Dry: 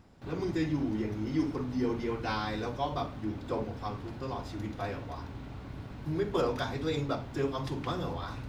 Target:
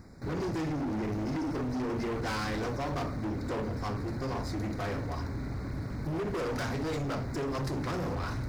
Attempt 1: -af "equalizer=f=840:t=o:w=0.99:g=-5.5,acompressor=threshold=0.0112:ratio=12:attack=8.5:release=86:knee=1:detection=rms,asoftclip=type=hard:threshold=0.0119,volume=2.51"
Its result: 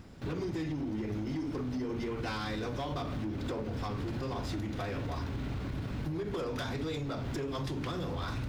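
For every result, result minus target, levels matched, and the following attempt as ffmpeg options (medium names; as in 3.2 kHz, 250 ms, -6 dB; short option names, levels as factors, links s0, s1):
compression: peak gain reduction +8.5 dB; 4 kHz band +3.0 dB
-af "equalizer=f=840:t=o:w=0.99:g=-5.5,acompressor=threshold=0.0316:ratio=12:attack=8.5:release=86:knee=1:detection=rms,asoftclip=type=hard:threshold=0.0119,volume=2.51"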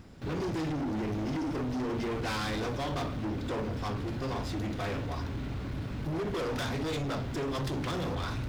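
4 kHz band +4.0 dB
-af "asuperstop=centerf=3000:order=8:qfactor=1.9,equalizer=f=840:t=o:w=0.99:g=-5.5,acompressor=threshold=0.0316:ratio=12:attack=8.5:release=86:knee=1:detection=rms,asoftclip=type=hard:threshold=0.0119,volume=2.51"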